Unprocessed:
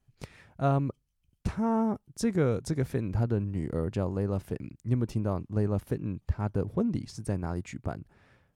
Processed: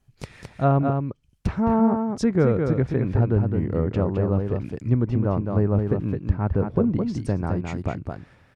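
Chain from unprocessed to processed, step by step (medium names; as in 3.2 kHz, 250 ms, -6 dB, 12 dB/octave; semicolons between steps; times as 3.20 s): delay 213 ms -5 dB; low-pass that closes with the level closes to 2.1 kHz, closed at -25 dBFS; trim +6.5 dB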